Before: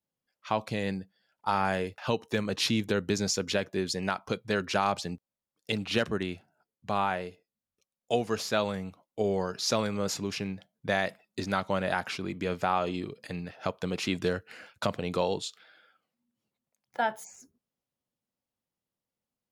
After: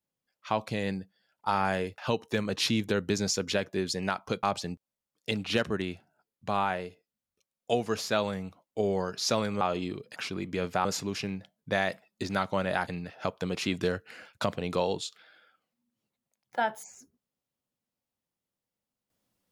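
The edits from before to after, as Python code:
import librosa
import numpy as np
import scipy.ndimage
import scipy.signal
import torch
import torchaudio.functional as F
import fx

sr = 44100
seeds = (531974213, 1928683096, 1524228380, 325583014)

y = fx.edit(x, sr, fx.cut(start_s=4.43, length_s=0.41),
    fx.swap(start_s=10.02, length_s=2.02, other_s=12.73, other_length_s=0.55), tone=tone)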